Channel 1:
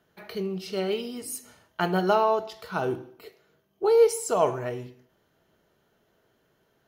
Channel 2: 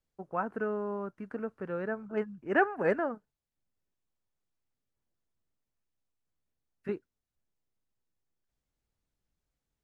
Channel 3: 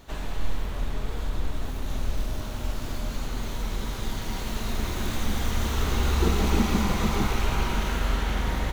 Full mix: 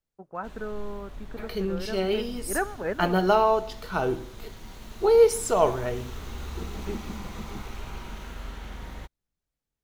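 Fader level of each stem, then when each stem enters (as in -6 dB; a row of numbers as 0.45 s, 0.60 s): +1.5 dB, -2.5 dB, -12.5 dB; 1.20 s, 0.00 s, 0.35 s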